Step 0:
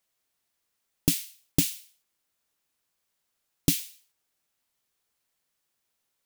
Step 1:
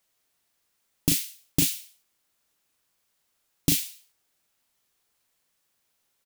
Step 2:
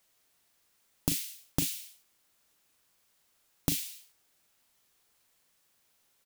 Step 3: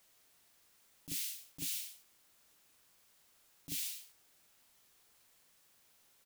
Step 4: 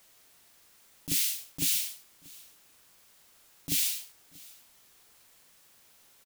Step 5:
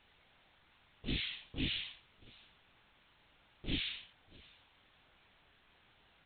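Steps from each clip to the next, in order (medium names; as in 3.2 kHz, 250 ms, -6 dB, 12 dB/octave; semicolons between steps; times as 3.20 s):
doubling 38 ms -10 dB; loudness maximiser +10 dB; trim -5.5 dB
compression 4:1, threshold -31 dBFS, peak gain reduction 12 dB; trim +3 dB
slow attack 193 ms; trim +2.5 dB
in parallel at -5.5 dB: crossover distortion -55.5 dBFS; on the sum: delay 635 ms -23 dB; trim +8 dB
every event in the spectrogram widened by 60 ms; LPC vocoder at 8 kHz whisper; trim -3.5 dB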